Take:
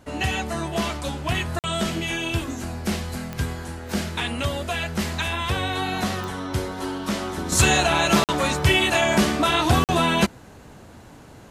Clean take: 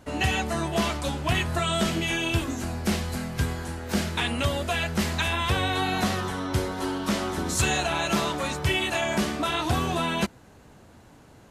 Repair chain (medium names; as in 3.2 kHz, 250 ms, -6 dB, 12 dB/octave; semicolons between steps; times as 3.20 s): de-click; interpolate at 1.59/8.24/9.84 s, 48 ms; gain correction -6.5 dB, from 7.52 s